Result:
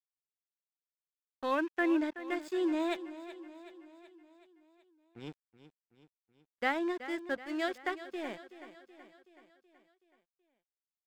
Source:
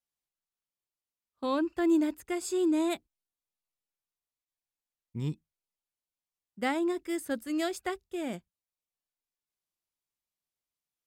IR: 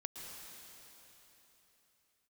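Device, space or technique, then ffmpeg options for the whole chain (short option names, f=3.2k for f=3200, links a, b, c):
pocket radio on a weak battery: -filter_complex "[0:a]asettb=1/sr,asplit=3[a][b][c];[a]atrim=end=1.514[d];[b]atrim=start=1.51:end=1.98,asetpts=PTS-STARTPTS,afade=t=in:d=0.004:c=qsin,afade=t=out:st=0.466:d=0.004:c=qsin,highshelf=f=3.7k:t=q:w=3:g=-13[e];[c]atrim=start=1.976[f];[d][e]acrossfade=d=0.004:c1=hsin:c2=qsin[g];[g][f]acrossfade=d=0.004:c1=qsin:c2=hsin,highpass=360,lowpass=4k,aeval=exprs='sgn(val(0))*max(abs(val(0))-0.00335,0)':c=same,equalizer=f=1.7k:t=o:w=0.43:g=5,aecho=1:1:376|752|1128|1504|1880|2256:0.2|0.112|0.0626|0.035|0.0196|0.011"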